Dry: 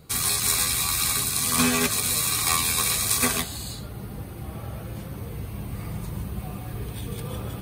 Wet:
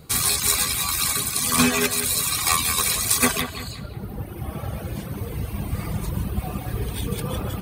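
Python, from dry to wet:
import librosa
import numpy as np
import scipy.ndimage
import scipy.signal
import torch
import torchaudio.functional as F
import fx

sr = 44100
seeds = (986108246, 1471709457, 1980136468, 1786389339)

y = fx.dereverb_blind(x, sr, rt60_s=1.8)
y = fx.rider(y, sr, range_db=3, speed_s=2.0)
y = fx.echo_bbd(y, sr, ms=181, stages=4096, feedback_pct=40, wet_db=-9.0)
y = y * librosa.db_to_amplitude(5.5)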